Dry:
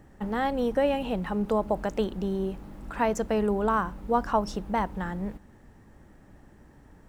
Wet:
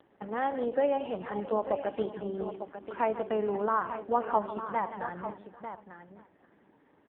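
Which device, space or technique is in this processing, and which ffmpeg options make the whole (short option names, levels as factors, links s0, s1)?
satellite phone: -af "highpass=300,lowpass=3300,aecho=1:1:74|150|897:0.126|0.237|0.316,aecho=1:1:522:0.126,volume=0.794" -ar 8000 -c:a libopencore_amrnb -b:a 4750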